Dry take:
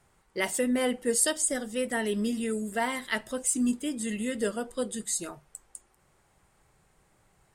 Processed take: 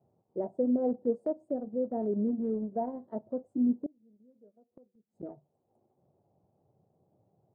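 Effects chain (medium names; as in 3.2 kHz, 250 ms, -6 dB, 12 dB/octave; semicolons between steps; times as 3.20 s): elliptic band-pass 100–700 Hz, stop band 50 dB; transient shaper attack 0 dB, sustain -6 dB; 3.86–5.23 s: inverted gate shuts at -37 dBFS, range -29 dB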